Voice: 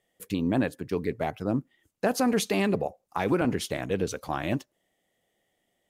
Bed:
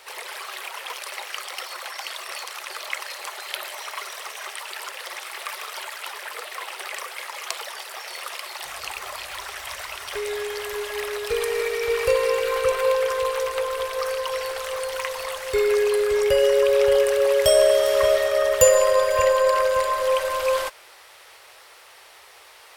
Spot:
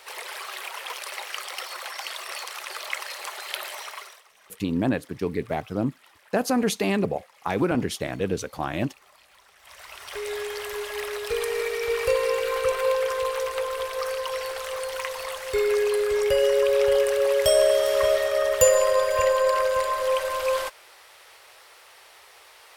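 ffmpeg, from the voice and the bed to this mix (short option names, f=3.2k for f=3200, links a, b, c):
-filter_complex "[0:a]adelay=4300,volume=1.5dB[a];[1:a]volume=18.5dB,afade=t=out:st=3.75:d=0.48:silence=0.0891251,afade=t=in:st=9.58:d=0.75:silence=0.105925[b];[a][b]amix=inputs=2:normalize=0"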